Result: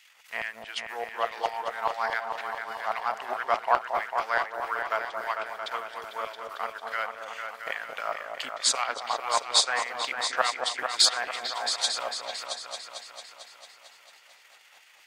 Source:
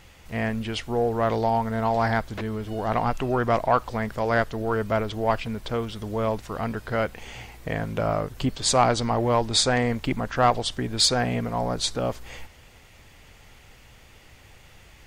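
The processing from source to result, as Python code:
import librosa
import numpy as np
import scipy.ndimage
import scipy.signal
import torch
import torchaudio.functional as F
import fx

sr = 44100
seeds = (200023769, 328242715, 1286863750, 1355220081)

y = fx.transient(x, sr, attack_db=6, sustain_db=-11)
y = fx.filter_lfo_highpass(y, sr, shape='saw_down', hz=4.8, low_hz=830.0, high_hz=2500.0, q=1.2)
y = fx.echo_opening(y, sr, ms=224, hz=750, octaves=2, feedback_pct=70, wet_db=-3)
y = F.gain(torch.from_numpy(y), -3.5).numpy()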